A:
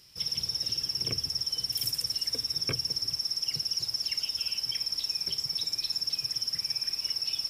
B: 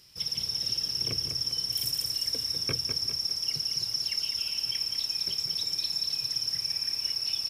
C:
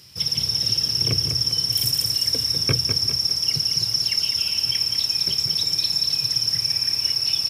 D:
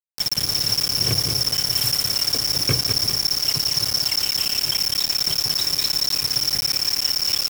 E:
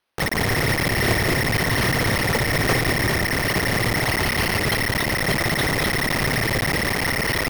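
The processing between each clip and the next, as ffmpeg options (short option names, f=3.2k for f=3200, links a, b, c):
-af "aecho=1:1:201|402|603|804|1005:0.447|0.205|0.0945|0.0435|0.02"
-af "highpass=74,equalizer=f=100:t=o:w=1.6:g=7.5,volume=8.5dB"
-af "acrusher=bits=3:mix=0:aa=0.000001"
-filter_complex "[0:a]asplit=2[a][b];[b]highpass=f=720:p=1,volume=36dB,asoftclip=type=tanh:threshold=-7dB[c];[a][c]amix=inputs=2:normalize=0,lowpass=f=1.7k:p=1,volume=-6dB,acrusher=samples=6:mix=1:aa=0.000001"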